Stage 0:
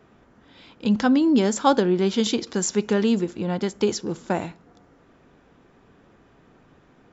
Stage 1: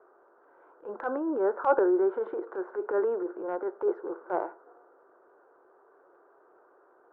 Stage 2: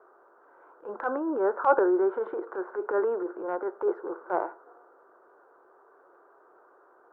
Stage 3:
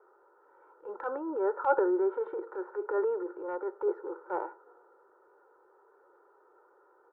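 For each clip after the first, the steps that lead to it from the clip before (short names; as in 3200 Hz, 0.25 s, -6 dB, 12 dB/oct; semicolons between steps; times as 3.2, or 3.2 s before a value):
Chebyshev band-pass 360–1500 Hz, order 4; transient shaper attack -9 dB, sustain +3 dB
bell 1200 Hz +4.5 dB 1.3 oct
comb 2.2 ms, depth 73%; gain -7 dB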